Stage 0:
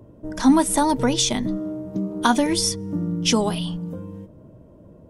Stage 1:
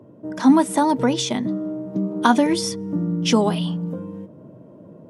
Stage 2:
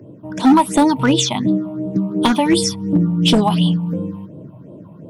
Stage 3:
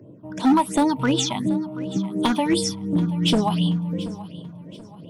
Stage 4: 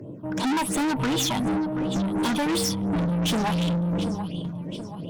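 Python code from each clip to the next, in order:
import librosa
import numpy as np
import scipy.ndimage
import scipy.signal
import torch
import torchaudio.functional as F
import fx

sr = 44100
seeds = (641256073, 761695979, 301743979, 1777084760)

y1 = scipy.signal.sosfilt(scipy.signal.butter(4, 130.0, 'highpass', fs=sr, output='sos'), x)
y1 = fx.high_shelf(y1, sr, hz=3800.0, db=-10.0)
y1 = fx.rider(y1, sr, range_db=4, speed_s=2.0)
y1 = y1 * librosa.db_to_amplitude(1.0)
y2 = fx.phaser_stages(y1, sr, stages=6, low_hz=410.0, high_hz=1800.0, hz=2.8, feedback_pct=35)
y2 = np.clip(y2, -10.0 ** (-14.5 / 20.0), 10.0 ** (-14.5 / 20.0))
y2 = fx.peak_eq(y2, sr, hz=230.0, db=-6.5, octaves=0.21)
y2 = y2 * librosa.db_to_amplitude(8.5)
y3 = fx.echo_feedback(y2, sr, ms=731, feedback_pct=38, wet_db=-17.5)
y3 = y3 * librosa.db_to_amplitude(-6.0)
y4 = fx.tube_stage(y3, sr, drive_db=30.0, bias=0.3)
y4 = y4 * librosa.db_to_amplitude(7.5)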